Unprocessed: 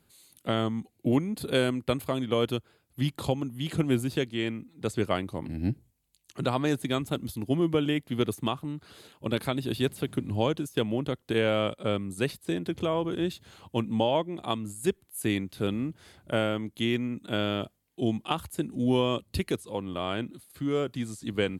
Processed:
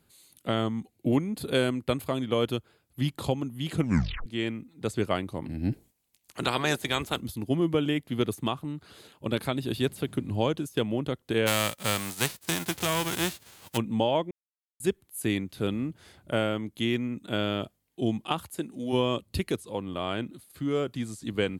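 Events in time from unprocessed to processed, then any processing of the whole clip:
3.8 tape stop 0.46 s
5.71–7.19 spectral limiter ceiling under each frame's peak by 17 dB
11.46–13.76 spectral whitening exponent 0.3
14.31–14.8 mute
18.38–18.92 HPF 150 Hz -> 600 Hz 6 dB/oct

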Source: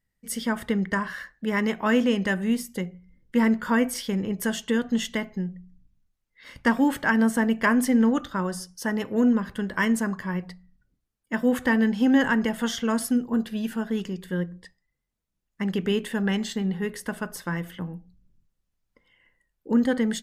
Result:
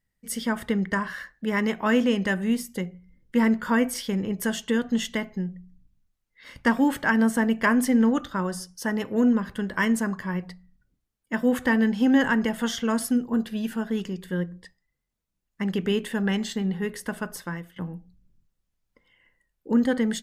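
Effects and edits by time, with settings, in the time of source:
17.35–17.76 fade out, to -15.5 dB

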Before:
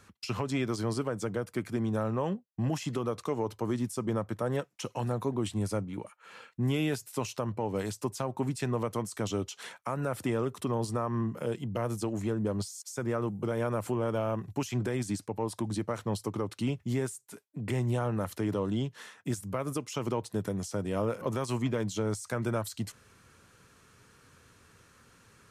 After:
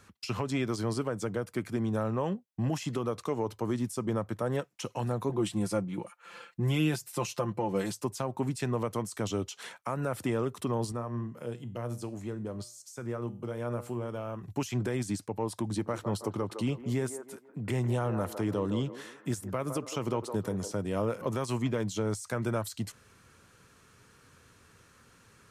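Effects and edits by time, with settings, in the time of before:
5.29–8 comb 5.8 ms, depth 71%
10.92–14.43 resonator 120 Hz, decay 0.4 s
15.62–20.72 band-limited delay 0.16 s, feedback 37%, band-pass 710 Hz, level -7 dB

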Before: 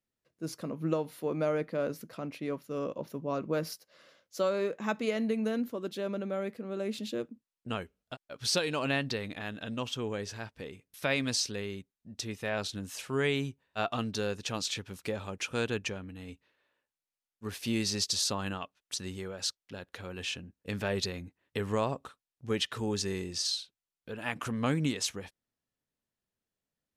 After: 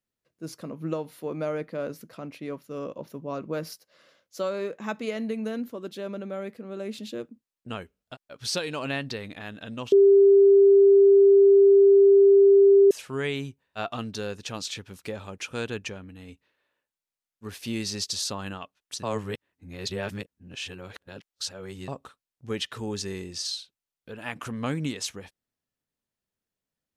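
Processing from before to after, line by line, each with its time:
9.92–12.91 bleep 396 Hz -12 dBFS
19.03–21.88 reverse

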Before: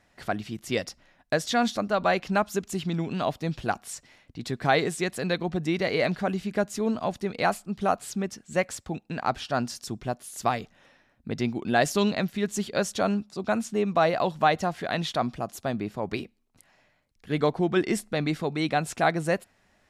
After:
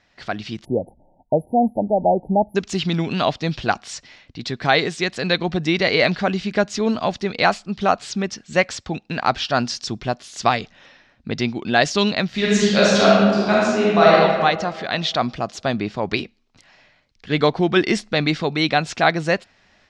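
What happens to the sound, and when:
0.64–2.56 spectral delete 940–9900 Hz
12.27–14.14 reverb throw, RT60 1.7 s, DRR -6 dB
whole clip: LPF 5400 Hz 24 dB/oct; high shelf 2100 Hz +9.5 dB; AGC gain up to 7 dB

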